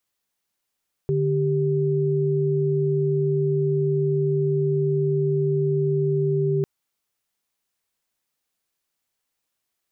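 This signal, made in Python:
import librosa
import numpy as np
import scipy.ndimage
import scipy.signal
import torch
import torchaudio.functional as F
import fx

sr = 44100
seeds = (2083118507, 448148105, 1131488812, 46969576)

y = fx.chord(sr, length_s=5.55, notes=(50, 67), wave='sine', level_db=-21.5)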